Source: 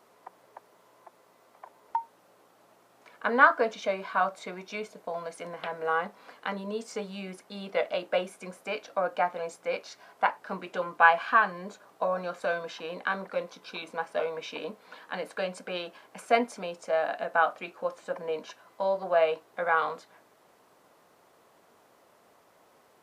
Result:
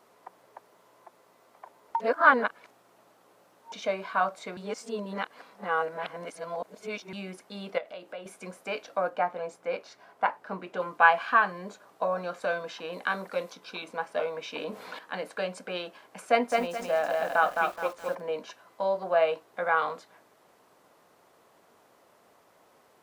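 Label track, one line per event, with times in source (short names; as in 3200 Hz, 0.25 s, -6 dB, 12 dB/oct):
2.000000	3.720000	reverse
4.570000	7.130000	reverse
7.780000	8.260000	compressor 2:1, threshold -47 dBFS
9.090000	10.800000	high shelf 2600 Hz -7.5 dB
12.920000	13.520000	high shelf 6900 Hz -> 4400 Hz +10.5 dB
14.540000	14.990000	fast leveller amount 50%
16.260000	18.210000	lo-fi delay 0.213 s, feedback 35%, word length 8-bit, level -3 dB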